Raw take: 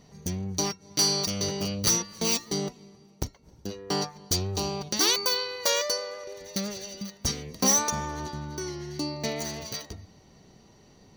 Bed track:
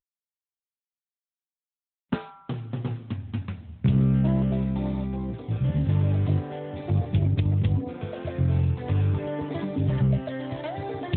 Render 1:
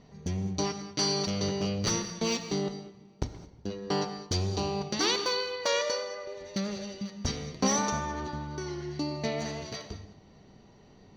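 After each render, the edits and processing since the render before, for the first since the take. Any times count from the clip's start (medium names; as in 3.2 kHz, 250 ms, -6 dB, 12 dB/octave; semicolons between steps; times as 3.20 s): distance through air 140 m; gated-style reverb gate 240 ms flat, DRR 9 dB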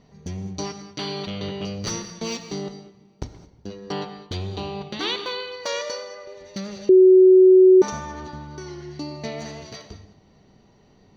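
0.98–1.65 s: resonant high shelf 4.4 kHz -8.5 dB, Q 3; 3.92–5.52 s: resonant high shelf 4.4 kHz -6.5 dB, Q 3; 6.89–7.82 s: bleep 373 Hz -8 dBFS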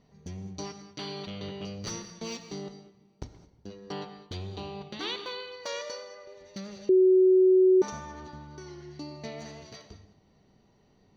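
trim -8 dB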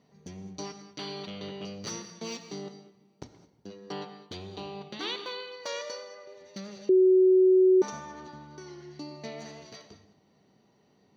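high-pass 150 Hz 12 dB/octave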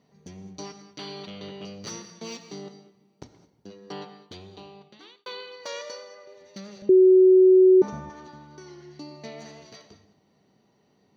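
4.08–5.26 s: fade out; 6.82–8.10 s: tilt EQ -3.5 dB/octave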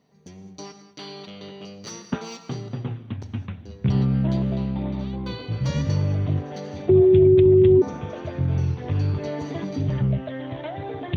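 add bed track 0 dB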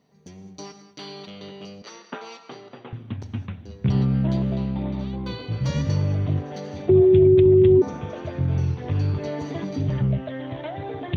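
1.82–2.93 s: band-pass 460–3700 Hz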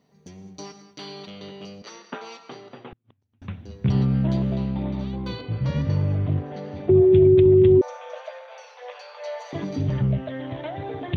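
2.89–3.42 s: inverted gate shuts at -31 dBFS, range -39 dB; 5.41–7.12 s: distance through air 220 m; 7.81–9.53 s: Chebyshev high-pass 490 Hz, order 8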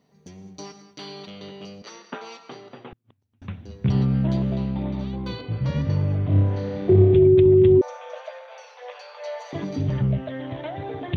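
6.27–7.16 s: flutter echo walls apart 5.2 m, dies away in 0.91 s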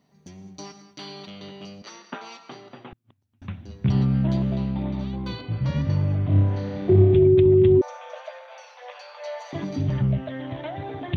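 peaking EQ 460 Hz -8 dB 0.28 oct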